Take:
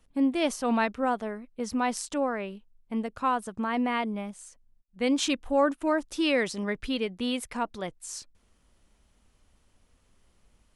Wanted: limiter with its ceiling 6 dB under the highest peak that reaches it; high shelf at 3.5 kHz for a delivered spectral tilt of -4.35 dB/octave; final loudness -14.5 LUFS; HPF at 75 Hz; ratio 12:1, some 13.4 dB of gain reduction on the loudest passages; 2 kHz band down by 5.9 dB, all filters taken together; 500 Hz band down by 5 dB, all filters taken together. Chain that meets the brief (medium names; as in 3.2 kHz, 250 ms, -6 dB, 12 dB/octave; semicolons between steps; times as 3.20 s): high-pass 75 Hz; peaking EQ 500 Hz -5.5 dB; peaking EQ 2 kHz -5 dB; treble shelf 3.5 kHz -7.5 dB; compression 12:1, threshold -36 dBFS; trim +28.5 dB; peak limiter -4.5 dBFS